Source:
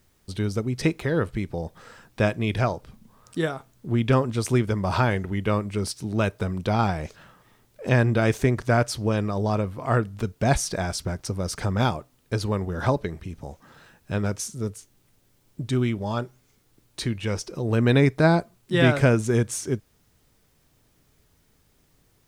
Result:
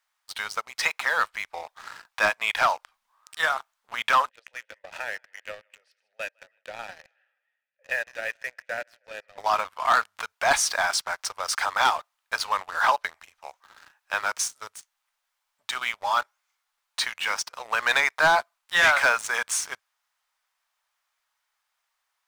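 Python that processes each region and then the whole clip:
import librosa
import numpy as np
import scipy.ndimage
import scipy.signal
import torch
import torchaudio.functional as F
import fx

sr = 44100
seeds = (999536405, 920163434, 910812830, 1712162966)

y = fx.chain(x, sr, fx.vowel_filter(vowel='e'),
    fx.echo_thinned(ms=158, feedback_pct=58, hz=900.0, wet_db=-16), at=(4.29, 9.38))
y = scipy.signal.sosfilt(scipy.signal.cheby2(4, 50, 360.0, 'highpass', fs=sr, output='sos'), y)
y = fx.tilt_eq(y, sr, slope=-3.0)
y = fx.leveller(y, sr, passes=3)
y = F.gain(torch.from_numpy(y), 2.0).numpy()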